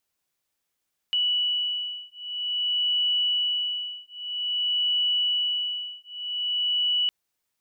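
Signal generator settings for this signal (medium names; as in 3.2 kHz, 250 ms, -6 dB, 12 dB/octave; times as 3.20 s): beating tones 2.95 kHz, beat 0.51 Hz, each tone -26.5 dBFS 5.96 s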